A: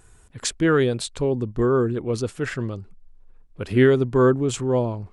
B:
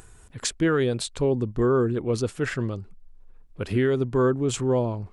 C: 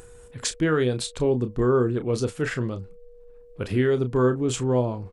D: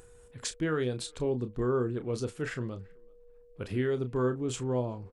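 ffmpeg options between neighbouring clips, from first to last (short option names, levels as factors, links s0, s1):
-af "alimiter=limit=0.2:level=0:latency=1:release=254,acompressor=mode=upward:threshold=0.00631:ratio=2.5"
-filter_complex "[0:a]asplit=2[s0][s1];[s1]adelay=32,volume=0.316[s2];[s0][s2]amix=inputs=2:normalize=0,aeval=exprs='val(0)+0.00398*sin(2*PI*480*n/s)':c=same"
-filter_complex "[0:a]asplit=2[s0][s1];[s1]adelay=380,highpass=300,lowpass=3400,asoftclip=type=hard:threshold=0.0841,volume=0.0398[s2];[s0][s2]amix=inputs=2:normalize=0,volume=0.398"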